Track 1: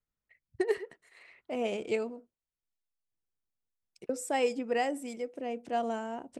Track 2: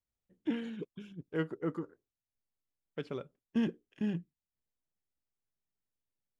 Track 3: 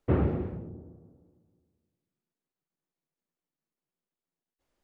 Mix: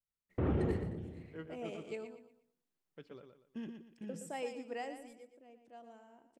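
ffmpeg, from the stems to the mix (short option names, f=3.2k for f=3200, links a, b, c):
-filter_complex "[0:a]volume=-12dB,afade=t=out:st=4.85:d=0.45:silence=0.281838,asplit=2[a][b];[b]volume=-9.5dB[c];[1:a]volume=-13.5dB,asplit=2[d][e];[e]volume=-7dB[f];[2:a]alimiter=limit=-24dB:level=0:latency=1,adelay=300,volume=-1dB[g];[c][f]amix=inputs=2:normalize=0,aecho=0:1:119|238|357|476:1|0.31|0.0961|0.0298[h];[a][d][g][h]amix=inputs=4:normalize=0"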